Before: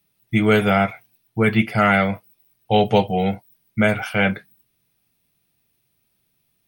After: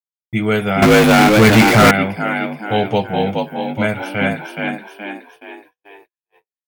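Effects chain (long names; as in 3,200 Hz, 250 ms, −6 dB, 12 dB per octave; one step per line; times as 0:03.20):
echo with shifted repeats 422 ms, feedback 46%, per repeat +50 Hz, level −3.5 dB
noise gate −44 dBFS, range −44 dB
0:00.82–0:01.91: power curve on the samples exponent 0.35
level −1 dB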